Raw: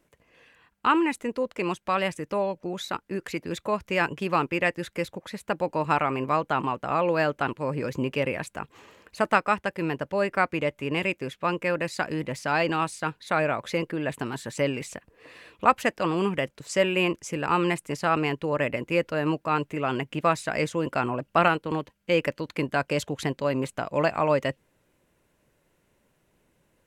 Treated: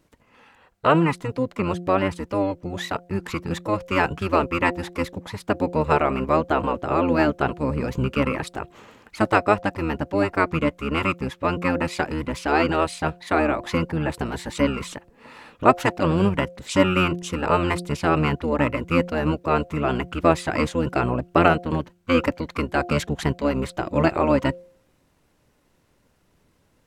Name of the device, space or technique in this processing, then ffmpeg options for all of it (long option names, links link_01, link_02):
octave pedal: -filter_complex "[0:a]asettb=1/sr,asplit=3[link_01][link_02][link_03];[link_01]atrim=end=1.144[link_04];[link_02]atrim=start=1.14:end=2.51,asetpts=PTS-STARTPTS,afade=type=in:duration=0.004:curve=qsin,afade=type=out:start_time=1.366:duration=0.004:curve=qsin,acrossover=split=2500[link_05][link_06];[link_06]acompressor=threshold=-42dB:ratio=4:attack=1:release=60[link_07];[link_05][link_07]amix=inputs=2:normalize=0[link_08];[link_03]atrim=start=2.506[link_09];[link_04][link_08]acrossfade=duration=0.004:curve1=hsin:curve2=qsin[link_10];[link_10][link_09]acrossfade=duration=0.004:curve1=qsin:curve2=hsin,asplit=2[link_11][link_12];[link_12]asetrate=22050,aresample=44100,atempo=2,volume=0dB[link_13];[link_11][link_13]amix=inputs=2:normalize=0,bandreject=frequency=176.4:width_type=h:width=4,bandreject=frequency=352.8:width_type=h:width=4,bandreject=frequency=529.2:width_type=h:width=4,bandreject=frequency=705.6:width_type=h:width=4,volume=1.5dB"